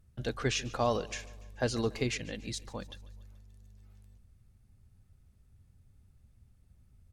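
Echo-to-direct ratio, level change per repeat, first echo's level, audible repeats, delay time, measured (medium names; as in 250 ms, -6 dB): -18.5 dB, -5.5 dB, -20.0 dB, 3, 144 ms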